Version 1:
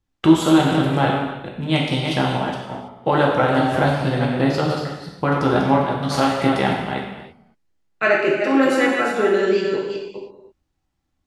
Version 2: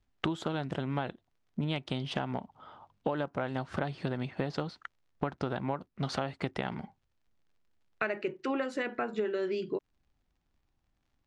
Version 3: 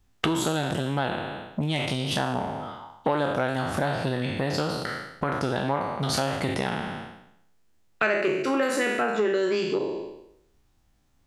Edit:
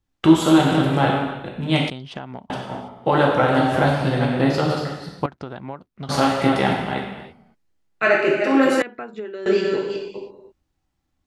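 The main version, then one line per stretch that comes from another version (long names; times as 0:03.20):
1
0:01.90–0:02.50: punch in from 2
0:05.26–0:06.09: punch in from 2
0:08.82–0:09.46: punch in from 2
not used: 3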